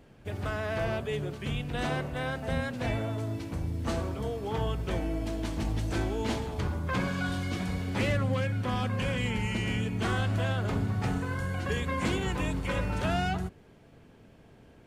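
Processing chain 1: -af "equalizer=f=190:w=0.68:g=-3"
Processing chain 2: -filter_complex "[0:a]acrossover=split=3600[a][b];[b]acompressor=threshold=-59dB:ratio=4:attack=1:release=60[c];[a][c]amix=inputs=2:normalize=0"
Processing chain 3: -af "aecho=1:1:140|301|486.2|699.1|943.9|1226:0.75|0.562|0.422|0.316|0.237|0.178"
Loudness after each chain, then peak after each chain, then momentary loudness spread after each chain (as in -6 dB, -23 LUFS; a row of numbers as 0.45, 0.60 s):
-33.0, -31.5, -28.5 LUFS; -18.5, -17.0, -13.5 dBFS; 5, 5, 5 LU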